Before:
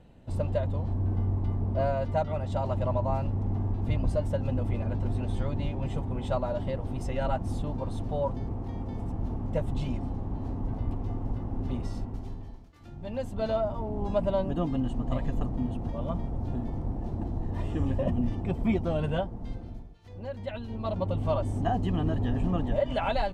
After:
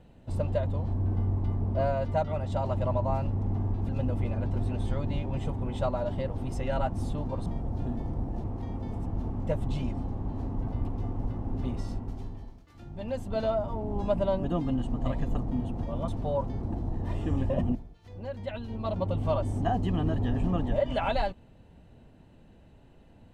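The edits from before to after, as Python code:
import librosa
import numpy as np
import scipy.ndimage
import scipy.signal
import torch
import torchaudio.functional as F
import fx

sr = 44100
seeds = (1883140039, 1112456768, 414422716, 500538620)

y = fx.edit(x, sr, fx.cut(start_s=3.89, length_s=0.49),
    fx.swap(start_s=7.95, length_s=0.55, other_s=16.14, other_length_s=0.98),
    fx.cut(start_s=18.24, length_s=1.51), tone=tone)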